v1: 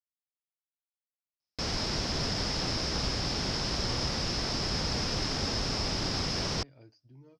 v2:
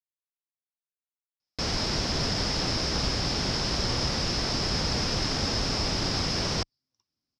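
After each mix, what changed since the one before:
speech: entry -2.60 s; background +3.5 dB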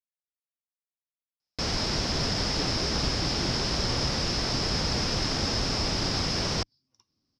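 speech +11.5 dB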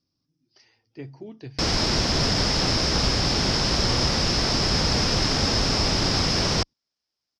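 speech: entry -1.60 s; background +5.5 dB

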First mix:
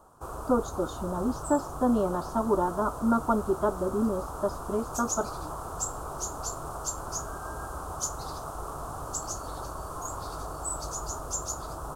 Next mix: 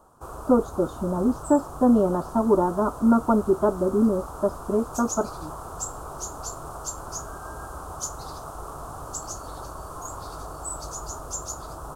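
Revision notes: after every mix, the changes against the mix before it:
speech: add tilt shelf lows +7.5 dB, about 1400 Hz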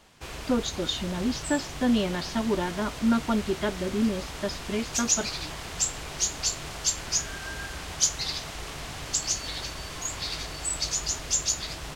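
speech: add tilt shelf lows -7.5 dB, about 1400 Hz; master: remove EQ curve 110 Hz 0 dB, 200 Hz -4 dB, 320 Hz +1 dB, 670 Hz +4 dB, 1300 Hz +7 dB, 2000 Hz -28 dB, 4900 Hz -16 dB, 9300 Hz 0 dB

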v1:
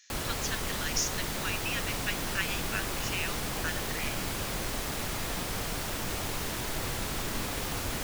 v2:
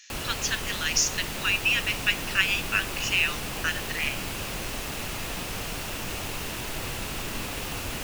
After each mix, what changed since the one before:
speech +7.0 dB; master: add bell 2700 Hz +7 dB 0.31 oct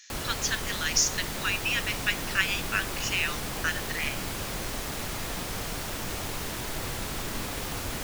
master: add bell 2700 Hz -7 dB 0.31 oct

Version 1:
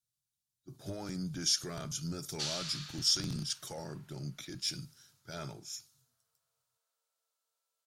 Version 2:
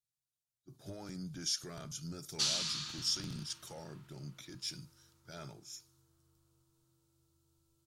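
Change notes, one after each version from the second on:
speech -5.5 dB; background: remove rippled Chebyshev high-pass 460 Hz, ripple 6 dB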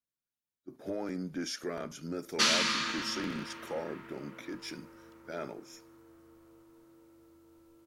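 background +8.5 dB; master: add graphic EQ 125/250/500/1000/2000/4000/8000 Hz -11/+12/+12/+4/+11/-5/-6 dB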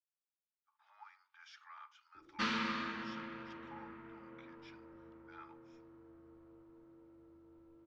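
speech: add rippled Chebyshev high-pass 830 Hz, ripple 6 dB; master: add tape spacing loss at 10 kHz 39 dB

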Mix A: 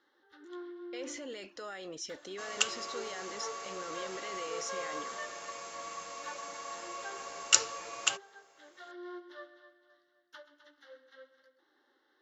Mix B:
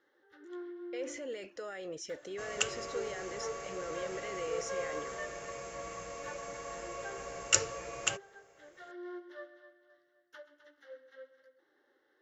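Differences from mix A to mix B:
second sound: remove HPF 420 Hz 6 dB/oct; master: add ten-band EQ 125 Hz +5 dB, 250 Hz -4 dB, 500 Hz +6 dB, 1000 Hz -6 dB, 2000 Hz +3 dB, 4000 Hz -8 dB

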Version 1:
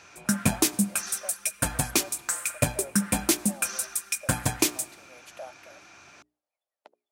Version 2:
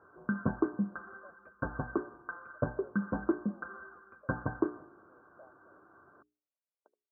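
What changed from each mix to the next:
speech -9.0 dB; master: add rippled Chebyshev low-pass 1600 Hz, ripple 9 dB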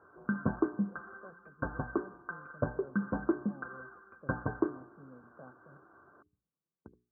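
speech: remove ladder high-pass 550 Hz, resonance 65%

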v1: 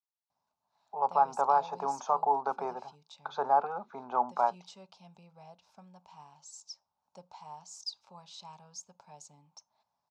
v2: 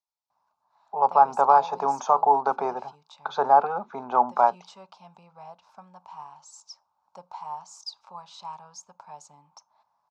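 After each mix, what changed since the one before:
speech +8.0 dB; background: add bell 1100 Hz +13.5 dB 1.5 oct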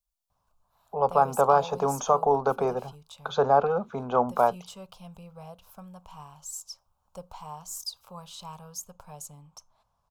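master: remove speaker cabinet 300–5700 Hz, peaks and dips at 490 Hz -9 dB, 880 Hz +9 dB, 1900 Hz +4 dB, 3100 Hz -8 dB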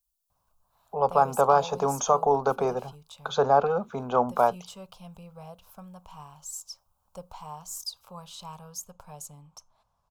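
speech: add high shelf 5900 Hz +10.5 dB

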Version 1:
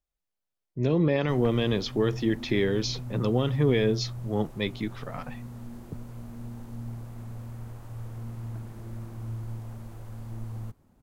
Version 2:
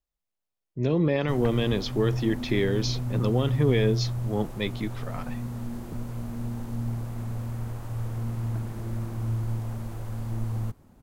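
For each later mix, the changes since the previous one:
background +7.0 dB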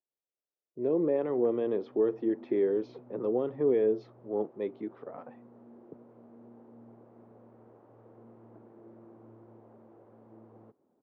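speech +8.0 dB; master: add ladder band-pass 480 Hz, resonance 35%

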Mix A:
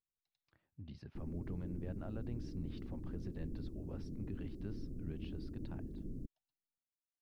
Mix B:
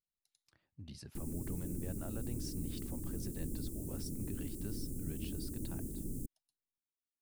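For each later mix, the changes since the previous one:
background +3.0 dB; master: remove air absorption 290 m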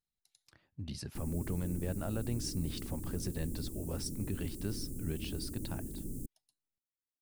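speech +8.0 dB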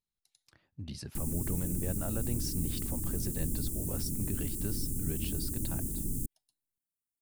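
background: add tone controls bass +7 dB, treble +12 dB

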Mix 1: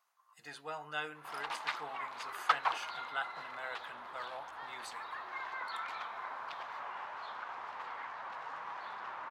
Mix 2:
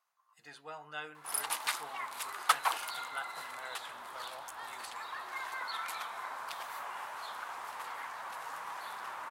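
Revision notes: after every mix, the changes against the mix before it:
speech -3.5 dB; background: remove air absorption 210 m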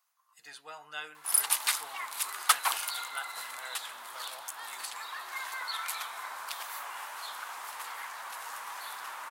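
master: add tilt +3 dB/oct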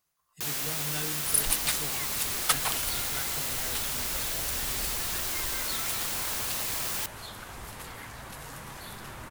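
first sound: unmuted; master: remove resonant high-pass 980 Hz, resonance Q 2

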